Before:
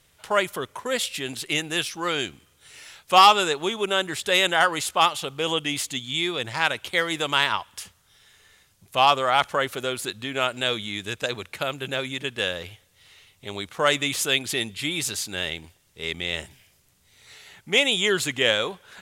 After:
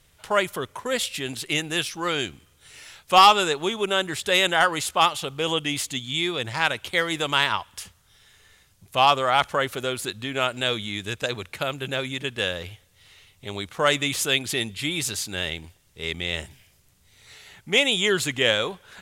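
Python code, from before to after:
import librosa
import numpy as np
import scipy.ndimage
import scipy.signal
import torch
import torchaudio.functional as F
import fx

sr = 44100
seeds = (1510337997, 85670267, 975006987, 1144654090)

y = fx.low_shelf(x, sr, hz=110.0, db=7.5)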